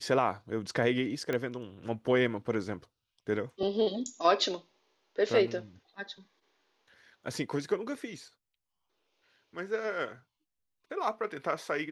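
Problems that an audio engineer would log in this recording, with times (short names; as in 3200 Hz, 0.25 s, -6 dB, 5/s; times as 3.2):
1.33 pop -19 dBFS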